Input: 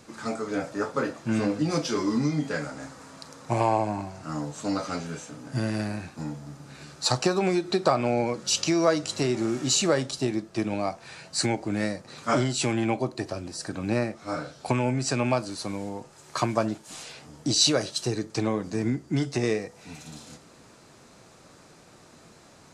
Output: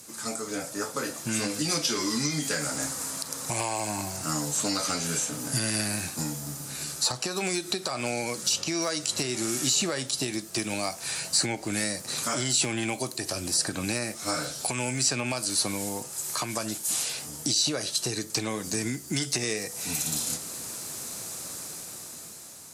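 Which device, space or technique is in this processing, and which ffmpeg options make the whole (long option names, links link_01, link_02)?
FM broadcast chain: -filter_complex "[0:a]highpass=44,dynaudnorm=framelen=320:gausssize=9:maxgain=11.5dB,acrossover=split=1500|4300[link_01][link_02][link_03];[link_01]acompressor=threshold=-25dB:ratio=4[link_04];[link_02]acompressor=threshold=-31dB:ratio=4[link_05];[link_03]acompressor=threshold=-42dB:ratio=4[link_06];[link_04][link_05][link_06]amix=inputs=3:normalize=0,aemphasis=mode=production:type=50fm,alimiter=limit=-15.5dB:level=0:latency=1:release=113,asoftclip=type=hard:threshold=-16.5dB,lowpass=frequency=15000:width=0.5412,lowpass=frequency=15000:width=1.3066,aemphasis=mode=production:type=50fm,volume=-3.5dB"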